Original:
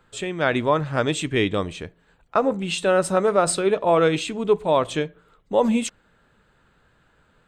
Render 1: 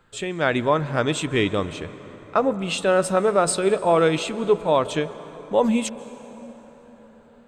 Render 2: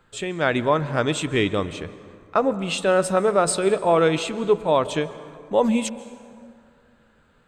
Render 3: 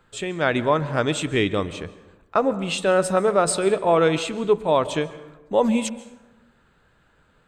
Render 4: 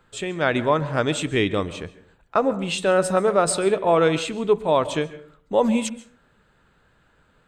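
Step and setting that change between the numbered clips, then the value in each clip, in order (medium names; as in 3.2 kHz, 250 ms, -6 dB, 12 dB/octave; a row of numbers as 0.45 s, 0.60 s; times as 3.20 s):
plate-style reverb, RT60: 5.2 s, 2.4 s, 1.1 s, 0.51 s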